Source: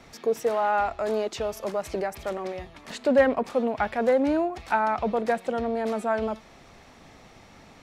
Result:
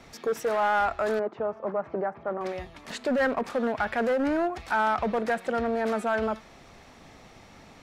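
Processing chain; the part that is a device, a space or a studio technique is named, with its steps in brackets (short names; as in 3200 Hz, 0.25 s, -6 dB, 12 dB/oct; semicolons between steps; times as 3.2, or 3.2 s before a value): limiter into clipper (limiter -18 dBFS, peak gain reduction 8 dB; hard clip -21.5 dBFS, distortion -19 dB); 1.19–2.41 Chebyshev band-pass 150–1100 Hz, order 2; dynamic EQ 1500 Hz, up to +7 dB, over -45 dBFS, Q 1.7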